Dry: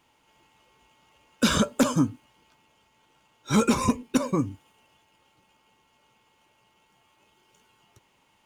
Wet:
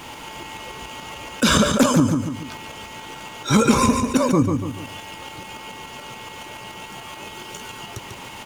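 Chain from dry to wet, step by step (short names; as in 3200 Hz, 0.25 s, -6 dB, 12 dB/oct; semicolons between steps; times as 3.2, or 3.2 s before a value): tremolo saw up 7 Hz, depth 50%; on a send: feedback echo 0.144 s, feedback 21%, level -10 dB; on the sum: fast leveller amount 50%; gain +5.5 dB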